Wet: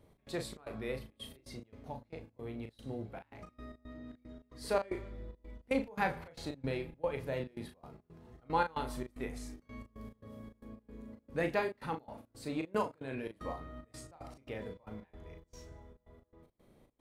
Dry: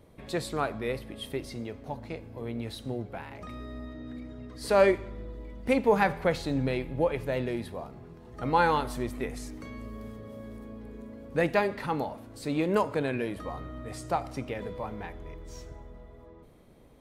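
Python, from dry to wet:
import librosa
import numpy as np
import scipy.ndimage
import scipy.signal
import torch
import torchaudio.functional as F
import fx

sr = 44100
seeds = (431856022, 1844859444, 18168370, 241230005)

y = fx.over_compress(x, sr, threshold_db=-34.0, ratio=-1.0, at=(12.91, 13.52), fade=0.02)
y = fx.step_gate(y, sr, bpm=113, pattern='x.xx.xxx.x.x.xx.', floor_db=-24.0, edge_ms=4.5)
y = fx.doubler(y, sr, ms=37.0, db=-6.5)
y = F.gain(torch.from_numpy(y), -7.5).numpy()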